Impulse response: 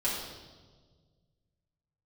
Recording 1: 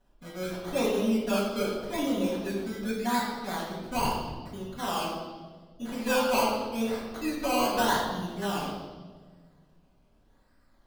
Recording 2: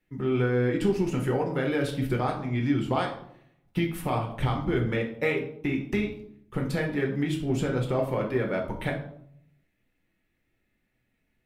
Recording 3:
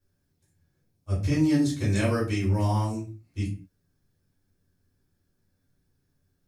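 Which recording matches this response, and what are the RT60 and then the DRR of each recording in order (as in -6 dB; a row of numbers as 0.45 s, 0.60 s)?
1; 1.5 s, 0.65 s, 0.40 s; -8.5 dB, 0.5 dB, -8.5 dB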